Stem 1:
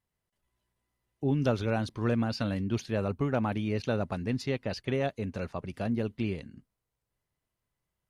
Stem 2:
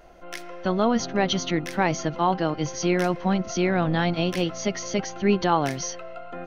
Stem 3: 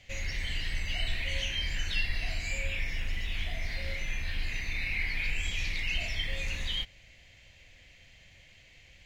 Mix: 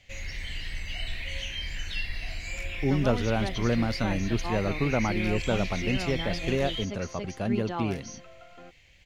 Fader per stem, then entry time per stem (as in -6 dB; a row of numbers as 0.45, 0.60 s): +2.0, -12.5, -2.0 dB; 1.60, 2.25, 0.00 s